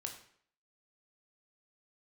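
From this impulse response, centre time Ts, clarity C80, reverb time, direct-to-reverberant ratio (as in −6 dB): 18 ms, 11.5 dB, 0.60 s, 3.0 dB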